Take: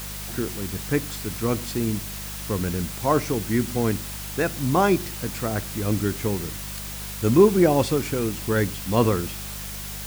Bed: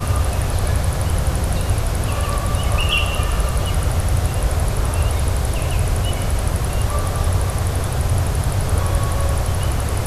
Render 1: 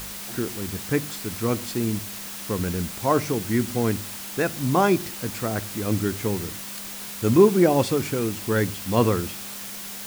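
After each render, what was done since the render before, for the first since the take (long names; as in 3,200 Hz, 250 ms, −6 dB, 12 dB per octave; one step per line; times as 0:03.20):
hum removal 50 Hz, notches 3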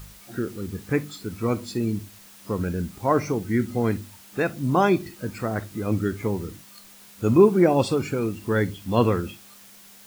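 noise reduction from a noise print 13 dB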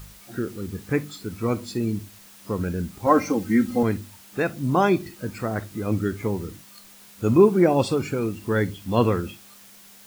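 0:03.06–0:03.83: comb filter 3.8 ms, depth 94%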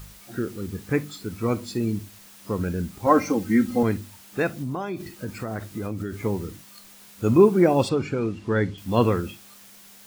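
0:04.48–0:06.23: downward compressor 16 to 1, threshold −25 dBFS
0:07.89–0:08.78: high-frequency loss of the air 93 metres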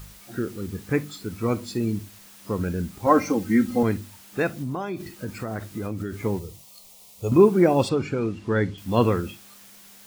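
0:06.39–0:07.32: phaser with its sweep stopped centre 640 Hz, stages 4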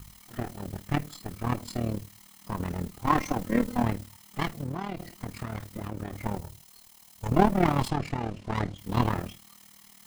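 lower of the sound and its delayed copy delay 0.98 ms
amplitude modulation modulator 38 Hz, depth 65%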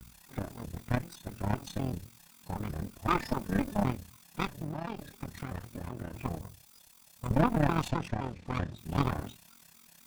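tube saturation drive 18 dB, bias 0.7
pitch modulation by a square or saw wave square 3.9 Hz, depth 250 cents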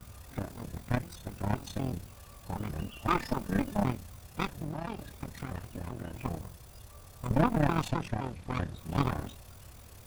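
mix in bed −32 dB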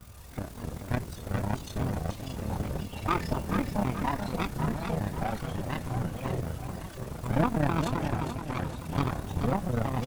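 repeating echo 432 ms, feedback 47%, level −7 dB
delay with pitch and tempo change per echo 160 ms, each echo −4 semitones, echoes 2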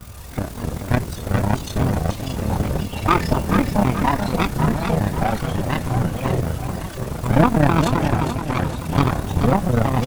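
level +11 dB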